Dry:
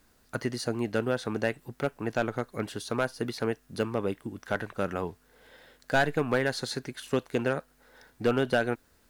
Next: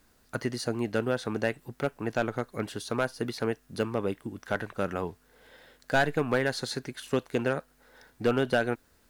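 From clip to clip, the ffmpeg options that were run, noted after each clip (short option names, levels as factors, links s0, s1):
-af anull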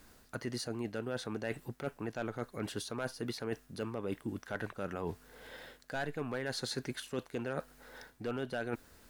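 -af "alimiter=limit=0.0944:level=0:latency=1:release=53,areverse,acompressor=threshold=0.0112:ratio=6,areverse,volume=1.68"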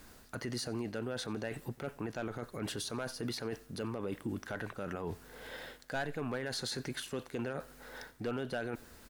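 -af "alimiter=level_in=2.66:limit=0.0631:level=0:latency=1:release=22,volume=0.376,aecho=1:1:91|182|273:0.0668|0.0354|0.0188,volume=1.58"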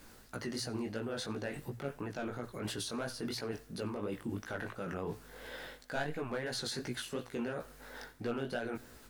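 -af "bandreject=f=60:t=h:w=6,bandreject=f=120:t=h:w=6,flanger=delay=16:depth=5.9:speed=2.9,volume=1.41"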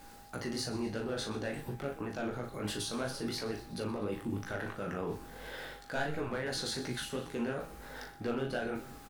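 -filter_complex "[0:a]asplit=2[s0][s1];[s1]adelay=39,volume=0.473[s2];[s0][s2]amix=inputs=2:normalize=0,aeval=exprs='val(0)+0.00158*sin(2*PI*810*n/s)':c=same,asplit=7[s3][s4][s5][s6][s7][s8][s9];[s4]adelay=123,afreqshift=-97,volume=0.158[s10];[s5]adelay=246,afreqshift=-194,volume=0.0933[s11];[s6]adelay=369,afreqshift=-291,volume=0.055[s12];[s7]adelay=492,afreqshift=-388,volume=0.0327[s13];[s8]adelay=615,afreqshift=-485,volume=0.0193[s14];[s9]adelay=738,afreqshift=-582,volume=0.0114[s15];[s3][s10][s11][s12][s13][s14][s15]amix=inputs=7:normalize=0,volume=1.12"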